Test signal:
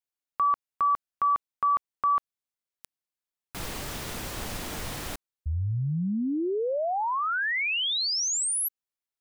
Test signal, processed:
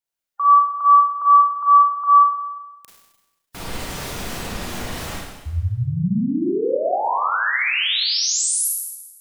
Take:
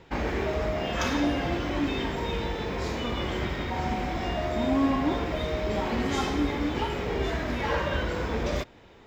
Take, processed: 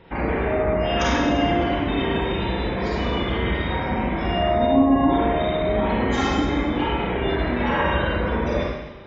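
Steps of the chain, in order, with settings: spectral gate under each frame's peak -25 dB strong; Schroeder reverb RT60 1.1 s, combs from 33 ms, DRR -4 dB; trim +1.5 dB

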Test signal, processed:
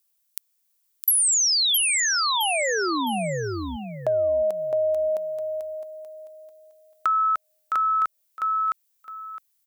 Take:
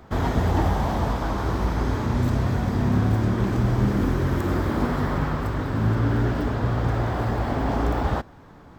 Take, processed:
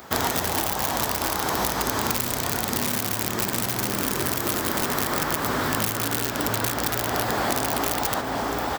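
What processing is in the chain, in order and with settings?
high-pass 41 Hz 12 dB/octave; feedback delay 662 ms, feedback 20%, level -6 dB; in parallel at -6 dB: integer overflow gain 15 dB; on the sum: RIAA curve recording; compression 6:1, threshold -24 dBFS; trim +4 dB

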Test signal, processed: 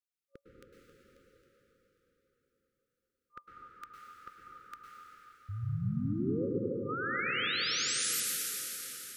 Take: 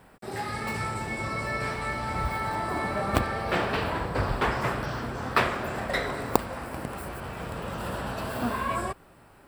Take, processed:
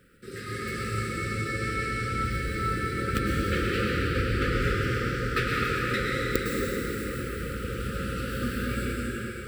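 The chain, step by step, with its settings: plate-style reverb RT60 4.8 s, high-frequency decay 0.8×, pre-delay 95 ms, DRR -4.5 dB; FFT band-reject 550–1200 Hz; trim -3.5 dB

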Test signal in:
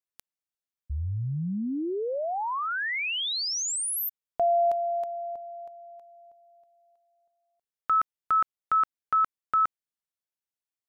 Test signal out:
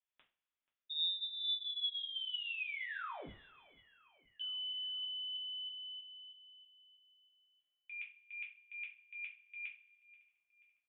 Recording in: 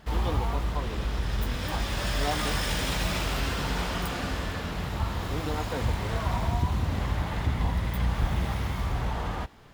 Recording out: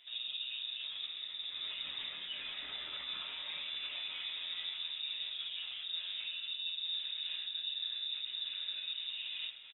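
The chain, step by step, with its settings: resonances exaggerated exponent 1.5; high-pass 210 Hz 6 dB/octave; band-stop 650 Hz, Q 12; peak limiter -27 dBFS; reverse; compression 10:1, threshold -43 dBFS; reverse; distance through air 400 m; on a send: feedback delay 483 ms, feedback 56%, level -22 dB; on the sum: two-slope reverb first 0.3 s, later 1.8 s, from -26 dB, DRR -3 dB; frequency inversion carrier 3.7 kHz

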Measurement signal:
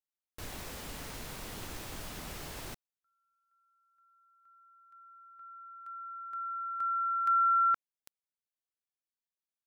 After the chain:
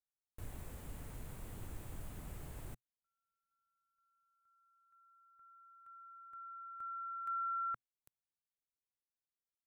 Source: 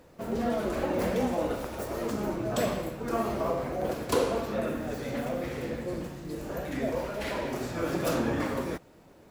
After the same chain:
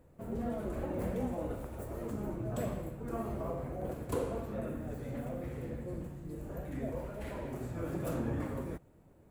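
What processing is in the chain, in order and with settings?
FFT filter 120 Hz 0 dB, 200 Hz -6 dB, 2.2 kHz -14 dB, 5.4 kHz -21 dB, 7.9 kHz -10 dB

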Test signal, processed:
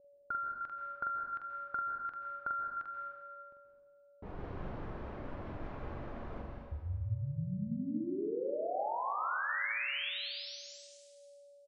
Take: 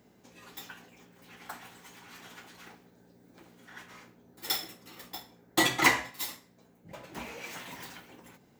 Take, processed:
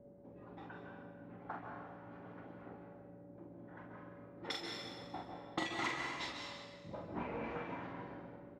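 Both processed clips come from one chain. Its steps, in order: whistle 570 Hz -59 dBFS; level-controlled noise filter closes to 530 Hz, open at -27 dBFS; compression 8:1, threshold -38 dBFS; reverb removal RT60 0.64 s; distance through air 110 m; on a send: early reflections 44 ms -4 dB, 71 ms -13.5 dB; on the sum: plate-style reverb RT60 1.5 s, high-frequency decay 0.95×, pre-delay 120 ms, DRR 1 dB; trim +1.5 dB

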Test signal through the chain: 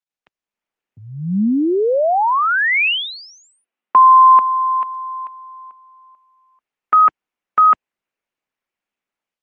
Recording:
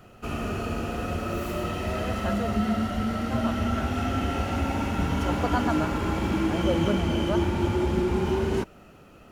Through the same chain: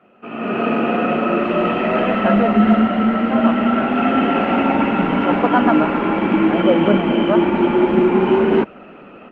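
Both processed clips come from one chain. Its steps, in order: elliptic band-pass 200–2700 Hz, stop band 60 dB; level rider gain up to 15 dB; Opus 24 kbps 48 kHz

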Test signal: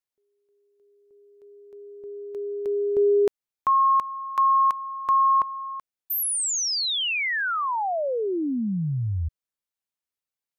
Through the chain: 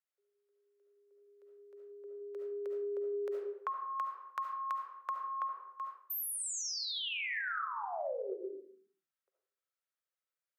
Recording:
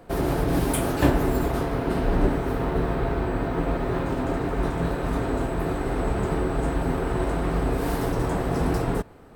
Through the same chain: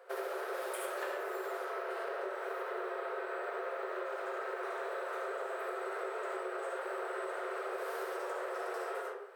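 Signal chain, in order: rippled Chebyshev high-pass 370 Hz, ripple 9 dB; algorithmic reverb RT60 0.59 s, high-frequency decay 0.7×, pre-delay 30 ms, DRR -1 dB; compression 6:1, threshold -34 dBFS; trim -1.5 dB

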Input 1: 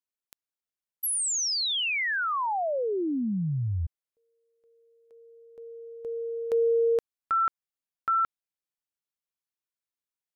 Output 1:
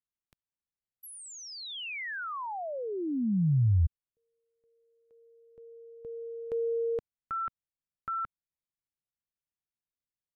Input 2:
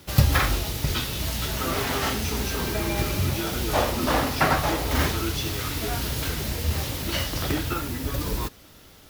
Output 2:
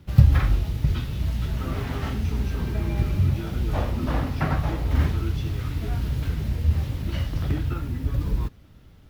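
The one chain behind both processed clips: tone controls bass +14 dB, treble -10 dB; trim -8.5 dB

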